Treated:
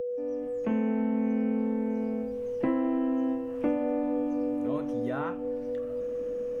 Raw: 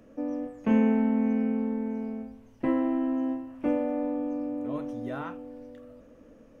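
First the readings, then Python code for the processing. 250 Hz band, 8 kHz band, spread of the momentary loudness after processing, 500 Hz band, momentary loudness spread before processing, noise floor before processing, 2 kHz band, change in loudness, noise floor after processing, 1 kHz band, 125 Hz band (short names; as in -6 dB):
-1.5 dB, n/a, 6 LU, +3.5 dB, 15 LU, -54 dBFS, -1.5 dB, -1.0 dB, -34 dBFS, -0.5 dB, -1.5 dB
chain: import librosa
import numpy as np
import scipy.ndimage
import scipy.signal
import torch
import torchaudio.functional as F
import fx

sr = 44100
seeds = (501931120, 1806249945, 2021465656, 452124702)

y = fx.fade_in_head(x, sr, length_s=1.53)
y = y + 10.0 ** (-38.0 / 20.0) * np.sin(2.0 * np.pi * 490.0 * np.arange(len(y)) / sr)
y = fx.band_squash(y, sr, depth_pct=70)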